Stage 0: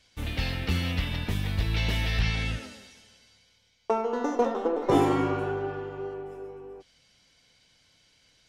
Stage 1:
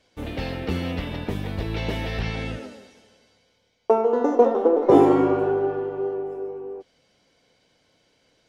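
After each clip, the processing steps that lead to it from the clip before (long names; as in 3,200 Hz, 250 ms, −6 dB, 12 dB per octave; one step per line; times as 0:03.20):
parametric band 450 Hz +15 dB 2.8 octaves
level −5.5 dB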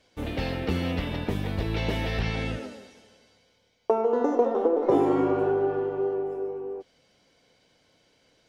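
downward compressor 2.5 to 1, threshold −21 dBFS, peak gain reduction 8.5 dB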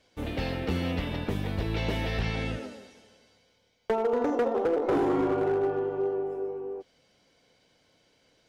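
gain into a clipping stage and back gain 19.5 dB
level −1.5 dB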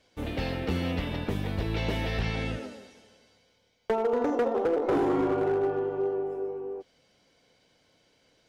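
no processing that can be heard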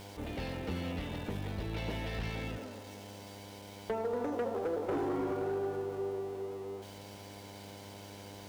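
converter with a step at zero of −38.5 dBFS
hum with harmonics 100 Hz, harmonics 10, −41 dBFS −3 dB per octave
level −9 dB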